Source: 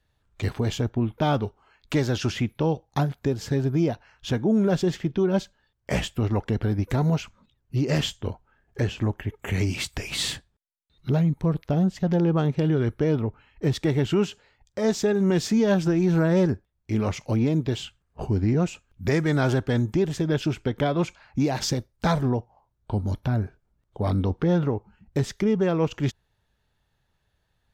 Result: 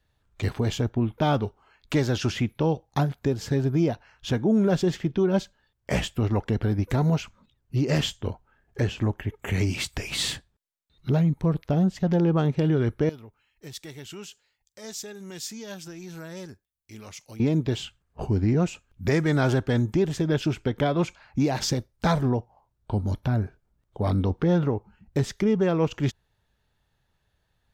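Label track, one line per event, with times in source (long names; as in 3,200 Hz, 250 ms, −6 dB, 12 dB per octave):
13.090000	17.400000	first-order pre-emphasis coefficient 0.9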